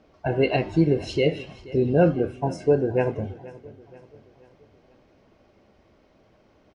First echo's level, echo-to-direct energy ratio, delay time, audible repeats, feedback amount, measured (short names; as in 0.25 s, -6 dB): -19.5 dB, -18.5 dB, 0.48 s, 3, 48%